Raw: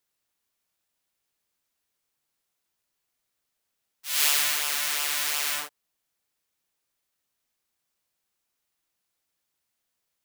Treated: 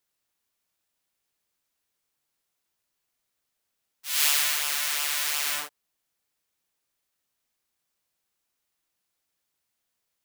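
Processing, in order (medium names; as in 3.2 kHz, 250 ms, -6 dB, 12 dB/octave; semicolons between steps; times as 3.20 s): 4.10–5.46 s: bass shelf 320 Hz -10.5 dB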